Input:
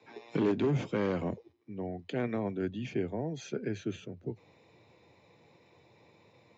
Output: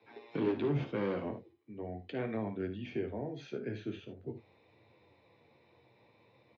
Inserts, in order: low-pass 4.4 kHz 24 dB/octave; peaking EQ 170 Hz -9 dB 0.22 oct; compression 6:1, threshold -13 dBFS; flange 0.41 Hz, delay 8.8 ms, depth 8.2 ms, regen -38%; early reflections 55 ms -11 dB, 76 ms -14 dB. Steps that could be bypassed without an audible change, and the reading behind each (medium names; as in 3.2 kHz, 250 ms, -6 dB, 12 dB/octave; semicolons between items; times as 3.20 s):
compression, threshold -13 dBFS: peak at its input -17.5 dBFS